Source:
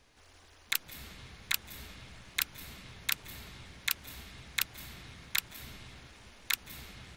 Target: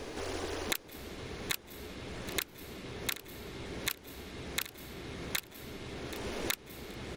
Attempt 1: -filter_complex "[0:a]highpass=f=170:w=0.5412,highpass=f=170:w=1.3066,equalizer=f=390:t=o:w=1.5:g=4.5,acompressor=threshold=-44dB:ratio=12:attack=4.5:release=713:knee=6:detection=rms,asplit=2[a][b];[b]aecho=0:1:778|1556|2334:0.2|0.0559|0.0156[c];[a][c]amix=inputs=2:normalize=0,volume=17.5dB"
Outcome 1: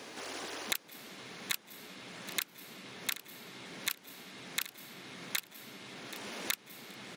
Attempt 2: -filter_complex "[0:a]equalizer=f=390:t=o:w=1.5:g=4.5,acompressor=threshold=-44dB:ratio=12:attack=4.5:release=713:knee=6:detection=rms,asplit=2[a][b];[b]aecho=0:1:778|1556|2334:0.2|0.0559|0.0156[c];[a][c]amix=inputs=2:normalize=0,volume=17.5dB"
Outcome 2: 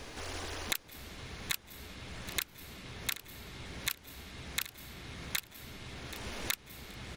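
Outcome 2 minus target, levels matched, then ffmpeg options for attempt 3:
500 Hz band -7.0 dB
-filter_complex "[0:a]equalizer=f=390:t=o:w=1.5:g=14.5,acompressor=threshold=-44dB:ratio=12:attack=4.5:release=713:knee=6:detection=rms,asplit=2[a][b];[b]aecho=0:1:778|1556|2334:0.2|0.0559|0.0156[c];[a][c]amix=inputs=2:normalize=0,volume=17.5dB"

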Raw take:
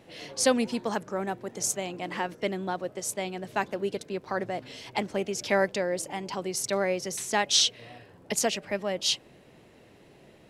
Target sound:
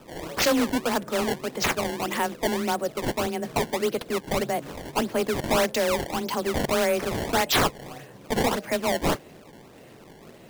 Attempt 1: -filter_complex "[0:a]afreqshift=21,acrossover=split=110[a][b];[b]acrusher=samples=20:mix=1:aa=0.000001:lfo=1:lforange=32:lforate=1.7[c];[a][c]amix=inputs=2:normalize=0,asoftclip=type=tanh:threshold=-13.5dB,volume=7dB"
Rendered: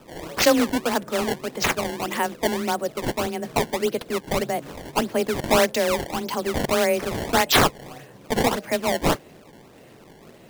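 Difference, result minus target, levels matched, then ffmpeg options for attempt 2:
soft clip: distortion -12 dB
-filter_complex "[0:a]afreqshift=21,acrossover=split=110[a][b];[b]acrusher=samples=20:mix=1:aa=0.000001:lfo=1:lforange=32:lforate=1.7[c];[a][c]amix=inputs=2:normalize=0,asoftclip=type=tanh:threshold=-24dB,volume=7dB"

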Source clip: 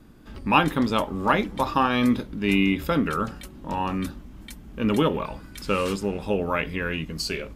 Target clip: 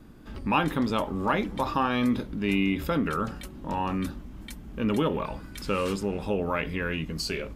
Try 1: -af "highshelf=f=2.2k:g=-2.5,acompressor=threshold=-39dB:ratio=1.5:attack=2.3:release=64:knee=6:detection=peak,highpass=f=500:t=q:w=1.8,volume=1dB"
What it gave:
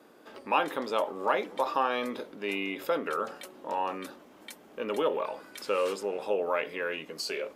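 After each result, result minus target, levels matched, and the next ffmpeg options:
500 Hz band +4.0 dB; compressor: peak gain reduction +3 dB
-af "highshelf=f=2.2k:g=-2.5,acompressor=threshold=-39dB:ratio=1.5:attack=2.3:release=64:knee=6:detection=peak,volume=1dB"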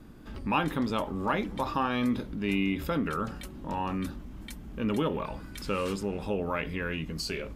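compressor: peak gain reduction +3 dB
-af "highshelf=f=2.2k:g=-2.5,acompressor=threshold=-30dB:ratio=1.5:attack=2.3:release=64:knee=6:detection=peak,volume=1dB"

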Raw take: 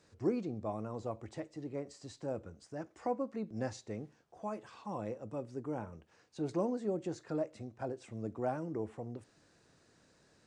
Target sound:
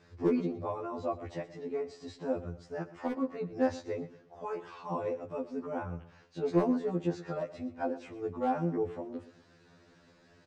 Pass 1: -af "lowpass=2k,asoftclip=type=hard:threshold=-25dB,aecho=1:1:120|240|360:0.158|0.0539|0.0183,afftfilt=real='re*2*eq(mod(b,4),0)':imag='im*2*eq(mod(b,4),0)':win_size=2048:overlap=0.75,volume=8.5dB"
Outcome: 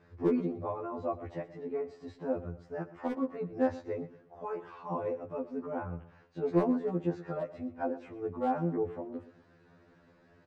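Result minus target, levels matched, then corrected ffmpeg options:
4000 Hz band -7.5 dB
-af "lowpass=4.1k,asoftclip=type=hard:threshold=-25dB,aecho=1:1:120|240|360:0.158|0.0539|0.0183,afftfilt=real='re*2*eq(mod(b,4),0)':imag='im*2*eq(mod(b,4),0)':win_size=2048:overlap=0.75,volume=8.5dB"

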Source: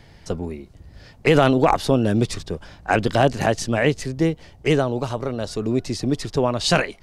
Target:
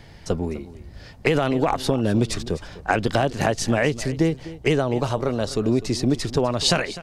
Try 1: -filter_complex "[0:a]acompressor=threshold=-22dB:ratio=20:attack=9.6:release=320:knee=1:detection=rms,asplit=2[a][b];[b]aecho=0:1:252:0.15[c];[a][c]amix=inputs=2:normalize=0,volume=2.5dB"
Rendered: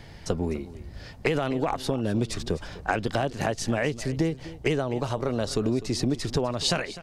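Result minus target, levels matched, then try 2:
compressor: peak gain reduction +5.5 dB
-filter_complex "[0:a]acompressor=threshold=-16dB:ratio=20:attack=9.6:release=320:knee=1:detection=rms,asplit=2[a][b];[b]aecho=0:1:252:0.15[c];[a][c]amix=inputs=2:normalize=0,volume=2.5dB"

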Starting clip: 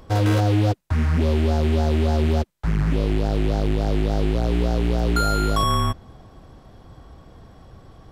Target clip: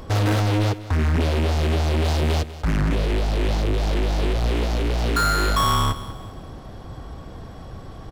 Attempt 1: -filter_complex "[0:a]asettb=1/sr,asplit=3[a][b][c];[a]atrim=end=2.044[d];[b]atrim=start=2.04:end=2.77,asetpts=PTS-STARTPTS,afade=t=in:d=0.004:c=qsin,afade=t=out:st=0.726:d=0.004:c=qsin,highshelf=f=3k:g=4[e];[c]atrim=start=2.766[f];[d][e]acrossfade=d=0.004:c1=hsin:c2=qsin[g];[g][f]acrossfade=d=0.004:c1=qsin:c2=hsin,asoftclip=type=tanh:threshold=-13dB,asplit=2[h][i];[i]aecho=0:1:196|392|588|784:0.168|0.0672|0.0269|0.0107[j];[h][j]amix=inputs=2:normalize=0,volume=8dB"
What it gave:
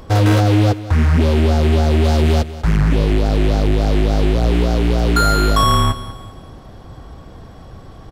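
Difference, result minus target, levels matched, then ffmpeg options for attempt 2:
soft clip: distortion -12 dB
-filter_complex "[0:a]asettb=1/sr,asplit=3[a][b][c];[a]atrim=end=2.044[d];[b]atrim=start=2.04:end=2.77,asetpts=PTS-STARTPTS,afade=t=in:d=0.004:c=qsin,afade=t=out:st=0.726:d=0.004:c=qsin,highshelf=f=3k:g=4[e];[c]atrim=start=2.766[f];[d][e]acrossfade=d=0.004:c1=hsin:c2=qsin[g];[g][f]acrossfade=d=0.004:c1=qsin:c2=hsin,asoftclip=type=tanh:threshold=-25dB,asplit=2[h][i];[i]aecho=0:1:196|392|588|784:0.168|0.0672|0.0269|0.0107[j];[h][j]amix=inputs=2:normalize=0,volume=8dB"

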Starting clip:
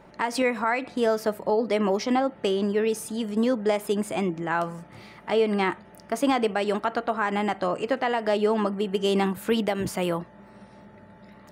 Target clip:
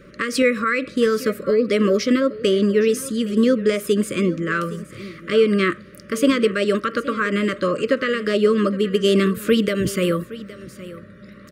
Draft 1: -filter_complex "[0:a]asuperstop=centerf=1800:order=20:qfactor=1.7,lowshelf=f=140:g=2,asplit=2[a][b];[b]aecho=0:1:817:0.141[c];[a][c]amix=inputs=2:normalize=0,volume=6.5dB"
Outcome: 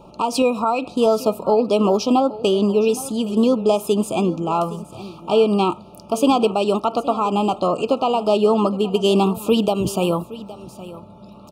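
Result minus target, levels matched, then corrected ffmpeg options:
2000 Hz band -11.5 dB
-filter_complex "[0:a]asuperstop=centerf=810:order=20:qfactor=1.7,lowshelf=f=140:g=2,asplit=2[a][b];[b]aecho=0:1:817:0.141[c];[a][c]amix=inputs=2:normalize=0,volume=6.5dB"

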